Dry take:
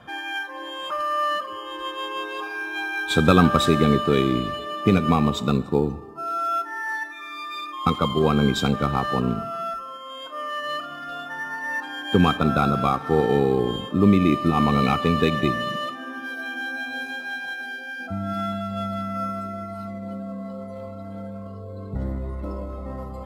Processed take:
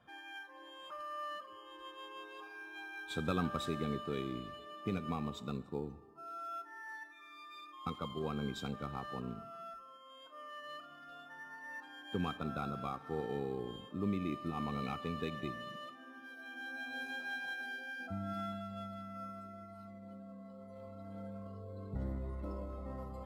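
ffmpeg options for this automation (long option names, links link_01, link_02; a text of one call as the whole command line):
ffmpeg -i in.wav -af "volume=-3dB,afade=type=in:start_time=16.4:duration=0.81:silence=0.354813,afade=type=out:start_time=17.79:duration=1.18:silence=0.398107,afade=type=in:start_time=20.56:duration=0.72:silence=0.446684" out.wav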